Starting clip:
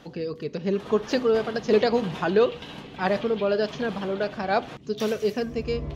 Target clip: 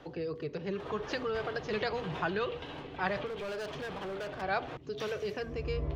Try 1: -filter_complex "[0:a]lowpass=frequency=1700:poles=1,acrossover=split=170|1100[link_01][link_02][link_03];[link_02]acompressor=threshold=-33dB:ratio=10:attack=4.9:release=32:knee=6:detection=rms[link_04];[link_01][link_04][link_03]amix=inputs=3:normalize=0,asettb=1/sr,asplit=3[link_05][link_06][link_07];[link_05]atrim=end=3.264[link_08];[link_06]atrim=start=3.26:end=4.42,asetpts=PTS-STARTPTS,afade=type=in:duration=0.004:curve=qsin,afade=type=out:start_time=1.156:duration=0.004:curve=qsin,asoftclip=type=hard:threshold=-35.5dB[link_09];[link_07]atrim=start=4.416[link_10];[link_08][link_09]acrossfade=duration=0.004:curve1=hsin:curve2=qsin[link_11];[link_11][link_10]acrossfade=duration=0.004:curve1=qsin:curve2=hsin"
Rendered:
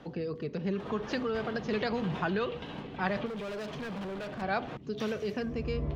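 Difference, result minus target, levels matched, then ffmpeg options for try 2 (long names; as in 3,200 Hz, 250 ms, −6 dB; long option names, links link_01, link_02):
250 Hz band +5.0 dB
-filter_complex "[0:a]lowpass=frequency=1700:poles=1,acrossover=split=170|1100[link_01][link_02][link_03];[link_02]acompressor=threshold=-33dB:ratio=10:attack=4.9:release=32:knee=6:detection=rms,highpass=frequency=220:width=0.5412,highpass=frequency=220:width=1.3066[link_04];[link_01][link_04][link_03]amix=inputs=3:normalize=0,asettb=1/sr,asplit=3[link_05][link_06][link_07];[link_05]atrim=end=3.264[link_08];[link_06]atrim=start=3.26:end=4.42,asetpts=PTS-STARTPTS,afade=type=in:duration=0.004:curve=qsin,afade=type=out:start_time=1.156:duration=0.004:curve=qsin,asoftclip=type=hard:threshold=-35.5dB[link_09];[link_07]atrim=start=4.416[link_10];[link_08][link_09]acrossfade=duration=0.004:curve1=hsin:curve2=qsin[link_11];[link_11][link_10]acrossfade=duration=0.004:curve1=qsin:curve2=hsin"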